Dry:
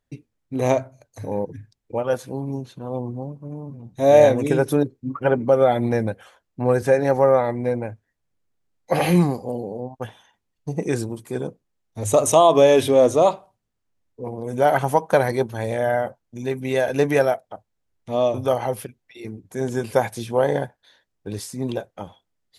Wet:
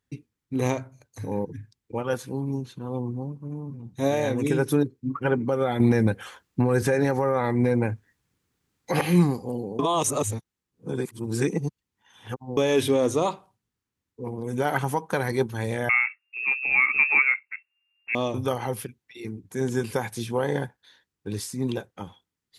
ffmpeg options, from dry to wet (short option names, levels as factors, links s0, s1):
-filter_complex "[0:a]asettb=1/sr,asplit=3[s0][s1][s2];[s0]atrim=end=15.894[s3];[s1]atrim=start=15.89:end=18.15,asetpts=PTS-STARTPTS,afade=t=in:d=0.004:c=qsin,afade=t=out:st=2.256:d=0.004:c=qsin,lowpass=f=2400:t=q:w=0.5098,lowpass=f=2400:t=q:w=0.6013,lowpass=f=2400:t=q:w=0.9,lowpass=f=2400:t=q:w=2.563,afreqshift=-2800[s4];[s2]atrim=start=18.146[s5];[s3][s4]acrossfade=d=0.004:c1=hsin:c2=qsin[s6];[s6][s5]acrossfade=d=0.004:c1=qsin:c2=hsin,asplit=5[s7][s8][s9][s10][s11];[s7]atrim=end=5.802[s12];[s8]atrim=start=5.798:end=9.012,asetpts=PTS-STARTPTS,volume=3.16[s13];[s9]atrim=start=9.008:end=9.792[s14];[s10]atrim=start=9.788:end=12.572,asetpts=PTS-STARTPTS,areverse[s15];[s11]atrim=start=12.568[s16];[s12][s13]acrossfade=d=0.004:c1=hsin:c2=hsin[s17];[s17][s14]acrossfade=d=0.004:c1=hsin:c2=hsin[s18];[s18][s15]acrossfade=d=0.004:c1=hsin:c2=hsin[s19];[s19][s16]acrossfade=d=0.004:c1=hsin:c2=hsin,highpass=56,alimiter=limit=0.355:level=0:latency=1:release=241,equalizer=f=630:w=2.7:g=-12"